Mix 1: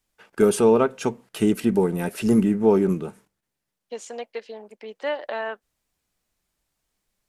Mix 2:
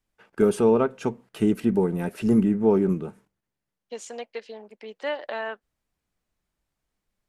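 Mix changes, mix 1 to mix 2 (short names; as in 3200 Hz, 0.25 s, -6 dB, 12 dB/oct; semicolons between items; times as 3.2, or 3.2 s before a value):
first voice: add high shelf 2600 Hz -10.5 dB; master: add bell 630 Hz -2.5 dB 2.5 oct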